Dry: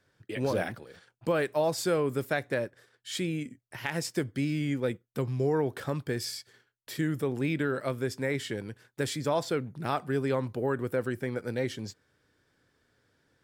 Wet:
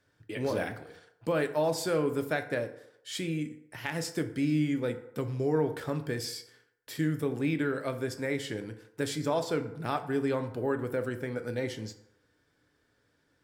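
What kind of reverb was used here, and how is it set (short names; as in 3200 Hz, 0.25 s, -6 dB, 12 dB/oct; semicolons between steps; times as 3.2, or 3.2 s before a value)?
FDN reverb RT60 0.81 s, low-frequency decay 0.7×, high-frequency decay 0.55×, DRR 7 dB; gain -2 dB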